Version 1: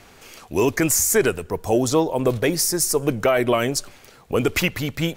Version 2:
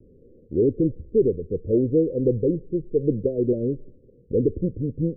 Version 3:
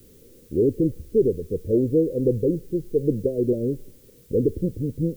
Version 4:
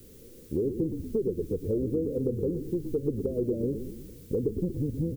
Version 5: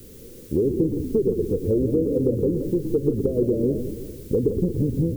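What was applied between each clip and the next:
steep low-pass 530 Hz 96 dB/oct
added noise blue -57 dBFS
compressor, threshold -26 dBFS, peak gain reduction 12 dB; frequency-shifting echo 0.118 s, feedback 58%, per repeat -34 Hz, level -8.5 dB
warbling echo 0.17 s, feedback 49%, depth 139 cents, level -10.5 dB; gain +7 dB

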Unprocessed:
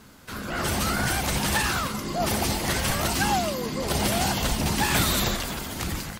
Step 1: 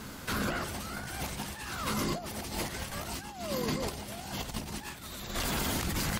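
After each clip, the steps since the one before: negative-ratio compressor -32 dBFS, ratio -0.5; limiter -22 dBFS, peak gain reduction 6.5 dB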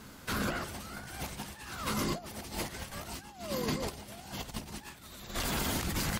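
upward expander 1.5:1, over -43 dBFS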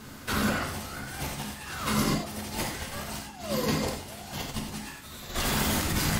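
non-linear reverb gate 0.12 s flat, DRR 1 dB; gain +3.5 dB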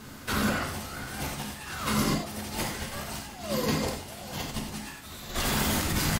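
hard clip -17 dBFS, distortion -33 dB; echo 0.713 s -17 dB

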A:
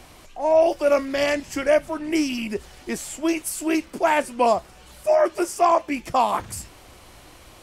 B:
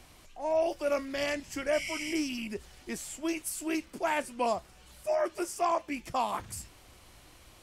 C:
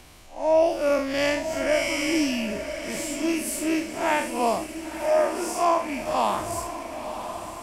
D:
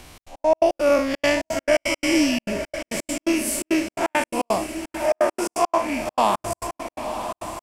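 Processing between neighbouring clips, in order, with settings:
spectral repair 1.76–2.11, 1900–12000 Hz after; bell 600 Hz -4 dB 2.8 oct; gain -7 dB
time blur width 0.129 s; in parallel at -10 dB: crossover distortion -47.5 dBFS; on the sum: diffused feedback echo 0.994 s, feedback 53%, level -9.5 dB; gain +8 dB
step gate "xx.x.x.x.xxxx." 170 bpm -60 dB; gain +4.5 dB

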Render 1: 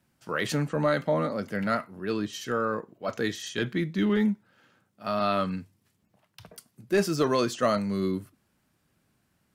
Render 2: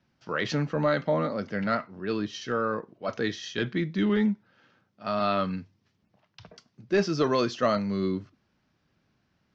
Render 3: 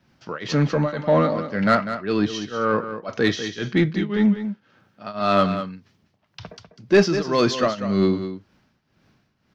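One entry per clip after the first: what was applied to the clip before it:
steep low-pass 6000 Hz 48 dB/oct
tremolo triangle 1.9 Hz, depth 95%; in parallel at -5 dB: soft clip -28.5 dBFS, distortion -9 dB; on the sum: echo 0.197 s -10.5 dB; gain +8 dB

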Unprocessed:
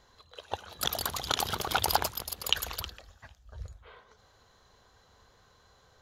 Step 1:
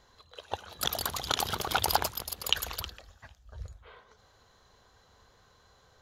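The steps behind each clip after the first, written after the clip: nothing audible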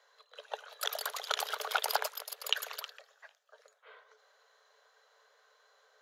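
rippled Chebyshev high-pass 420 Hz, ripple 6 dB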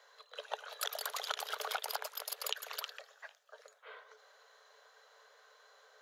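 compressor 10:1, threshold -38 dBFS, peak gain reduction 15.5 dB; gain +4 dB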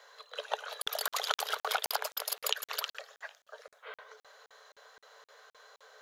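crackling interface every 0.26 s, samples 2048, zero, from 0.82; gain +6 dB

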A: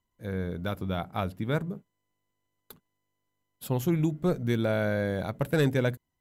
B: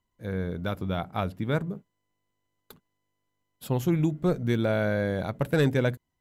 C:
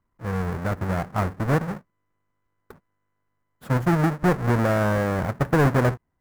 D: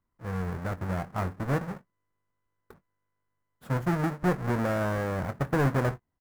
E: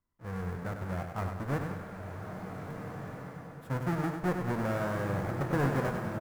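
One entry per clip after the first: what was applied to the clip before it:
high shelf 9300 Hz -6.5 dB; gain +1.5 dB
half-waves squared off; resonant high shelf 2300 Hz -10 dB, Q 1.5
doubler 22 ms -12.5 dB; gain -6.5 dB
on a send: feedback echo 99 ms, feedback 49%, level -6.5 dB; on the sum: bloom reverb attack 1.62 s, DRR 4 dB; gain -5 dB

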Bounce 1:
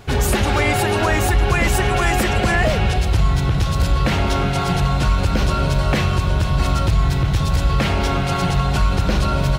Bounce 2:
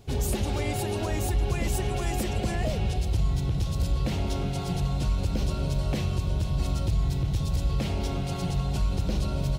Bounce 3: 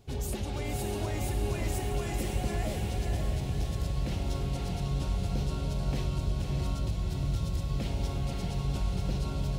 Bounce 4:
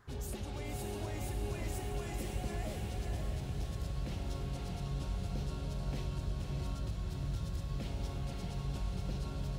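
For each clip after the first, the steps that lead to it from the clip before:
bell 1500 Hz -13 dB 1.6 oct; gain -8.5 dB
diffused feedback echo 0.565 s, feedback 53%, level -3.5 dB; gain -6.5 dB
band noise 910–1800 Hz -59 dBFS; gain -7 dB

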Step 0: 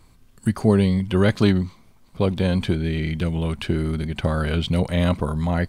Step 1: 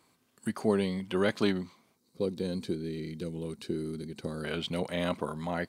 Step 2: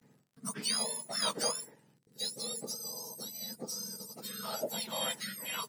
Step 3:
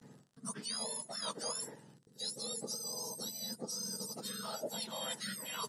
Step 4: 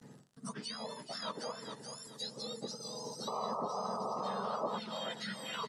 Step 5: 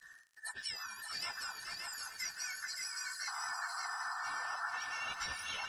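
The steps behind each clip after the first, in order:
spectral gain 1.96–4.44, 520–3700 Hz -12 dB; HPF 250 Hz 12 dB/oct; gain -6.5 dB
spectrum mirrored in octaves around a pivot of 1400 Hz; gate with hold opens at -56 dBFS; crackle 56/s -57 dBFS
reverse; compressor 6:1, threshold -45 dBFS, peak gain reduction 16.5 dB; reverse; LPF 11000 Hz 24 dB/oct; bell 2300 Hz -7 dB 0.41 oct; gain +7.5 dB
feedback echo 0.427 s, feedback 28%, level -9 dB; painted sound noise, 3.27–4.79, 390–1300 Hz -40 dBFS; treble ducked by the level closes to 2500 Hz, closed at -34.5 dBFS; gain +2 dB
band inversion scrambler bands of 2000 Hz; passive tone stack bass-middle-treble 5-5-5; lo-fi delay 0.571 s, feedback 35%, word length 13-bit, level -4 dB; gain +8.5 dB

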